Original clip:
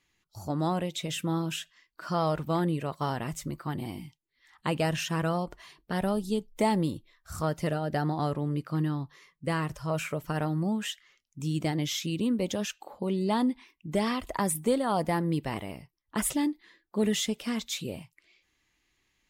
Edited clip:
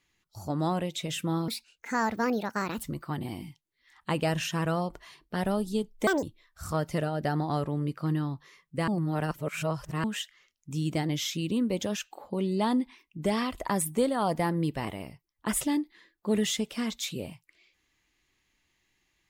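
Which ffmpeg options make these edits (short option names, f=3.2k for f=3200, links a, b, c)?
-filter_complex "[0:a]asplit=7[a][b][c][d][e][f][g];[a]atrim=end=1.484[h];[b]atrim=start=1.48:end=3.41,asetpts=PTS-STARTPTS,asetrate=62622,aresample=44100[i];[c]atrim=start=3.406:end=6.644[j];[d]atrim=start=6.64:end=6.92,asetpts=PTS-STARTPTS,asetrate=77616,aresample=44100[k];[e]atrim=start=6.916:end=9.572[l];[f]atrim=start=9.568:end=10.732,asetpts=PTS-STARTPTS,areverse[m];[g]atrim=start=10.728[n];[h][i]acrossfade=d=0.004:c1=hsin:c2=hsin[o];[o][j]acrossfade=d=0.004:c1=hsin:c2=hsin[p];[p][k]acrossfade=d=0.004:c1=hsin:c2=hsin[q];[q][l]acrossfade=d=0.004:c1=hsin:c2=hsin[r];[r][m]acrossfade=d=0.004:c1=hsin:c2=hsin[s];[s][n]acrossfade=d=0.004:c1=hsin:c2=hsin"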